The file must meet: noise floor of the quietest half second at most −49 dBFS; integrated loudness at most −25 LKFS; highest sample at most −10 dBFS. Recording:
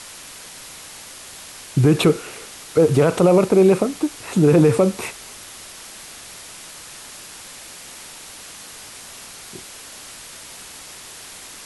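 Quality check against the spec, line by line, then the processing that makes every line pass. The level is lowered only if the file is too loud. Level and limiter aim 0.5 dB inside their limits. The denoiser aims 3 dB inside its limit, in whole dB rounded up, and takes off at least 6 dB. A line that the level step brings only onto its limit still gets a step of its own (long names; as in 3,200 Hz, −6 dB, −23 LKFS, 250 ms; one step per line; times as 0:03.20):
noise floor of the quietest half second −39 dBFS: out of spec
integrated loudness −17.0 LKFS: out of spec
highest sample −5.0 dBFS: out of spec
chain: broadband denoise 6 dB, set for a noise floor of −39 dBFS
level −8.5 dB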